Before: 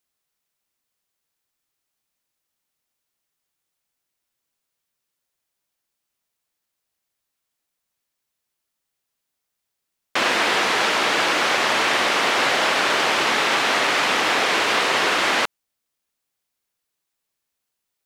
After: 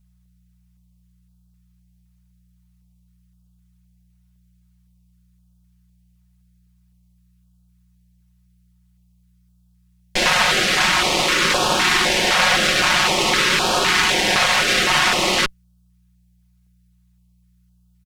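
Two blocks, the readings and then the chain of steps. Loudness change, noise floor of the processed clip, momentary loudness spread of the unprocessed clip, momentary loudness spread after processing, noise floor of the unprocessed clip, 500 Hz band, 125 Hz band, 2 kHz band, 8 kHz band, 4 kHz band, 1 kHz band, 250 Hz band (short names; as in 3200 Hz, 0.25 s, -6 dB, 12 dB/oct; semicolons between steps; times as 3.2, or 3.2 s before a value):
+3.0 dB, -59 dBFS, 1 LU, 2 LU, -81 dBFS, +0.5 dB, +11.0 dB, +2.0 dB, +6.5 dB, +4.5 dB, +0.5 dB, +3.5 dB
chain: buzz 60 Hz, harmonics 3, -59 dBFS -6 dB/oct; added harmonics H 4 -10 dB, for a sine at -6 dBFS; comb 5.5 ms; stepped notch 3.9 Hz 350–2000 Hz; gain +1.5 dB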